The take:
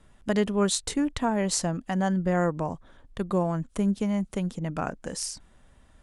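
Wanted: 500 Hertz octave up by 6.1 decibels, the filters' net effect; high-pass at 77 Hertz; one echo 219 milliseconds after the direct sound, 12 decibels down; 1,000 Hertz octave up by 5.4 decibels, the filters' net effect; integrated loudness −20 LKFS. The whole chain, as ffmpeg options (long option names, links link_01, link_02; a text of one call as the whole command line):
ffmpeg -i in.wav -af "highpass=77,equalizer=frequency=500:width_type=o:gain=6.5,equalizer=frequency=1000:width_type=o:gain=4.5,aecho=1:1:219:0.251,volume=4.5dB" out.wav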